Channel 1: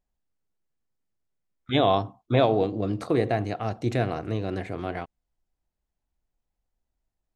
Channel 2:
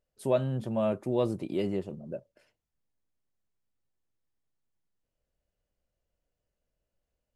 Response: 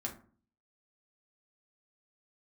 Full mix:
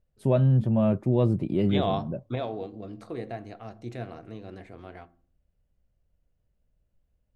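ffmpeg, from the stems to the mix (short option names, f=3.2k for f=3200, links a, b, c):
-filter_complex "[0:a]volume=-8dB,asplit=2[a][b];[b]volume=-14dB[c];[1:a]bass=f=250:g=13,treble=f=4k:g=-9,volume=0.5dB,asplit=2[d][e];[e]apad=whole_len=324237[f];[a][f]sidechaingate=range=-7dB:threshold=-54dB:ratio=16:detection=peak[g];[2:a]atrim=start_sample=2205[h];[c][h]afir=irnorm=-1:irlink=0[i];[g][d][i]amix=inputs=3:normalize=0"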